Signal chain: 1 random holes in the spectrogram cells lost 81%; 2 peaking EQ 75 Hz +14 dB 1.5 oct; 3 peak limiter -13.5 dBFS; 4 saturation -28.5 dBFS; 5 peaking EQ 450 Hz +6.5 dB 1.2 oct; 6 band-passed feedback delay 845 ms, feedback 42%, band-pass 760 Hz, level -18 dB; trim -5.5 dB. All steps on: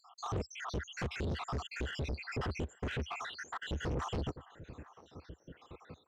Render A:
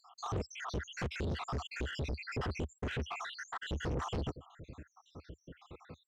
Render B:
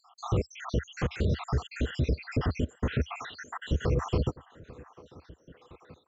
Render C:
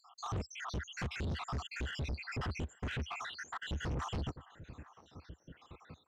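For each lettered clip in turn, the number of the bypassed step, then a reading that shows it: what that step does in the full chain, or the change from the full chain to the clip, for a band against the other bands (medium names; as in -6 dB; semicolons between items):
6, echo-to-direct -20.5 dB to none; 4, distortion -5 dB; 5, 500 Hz band -5.5 dB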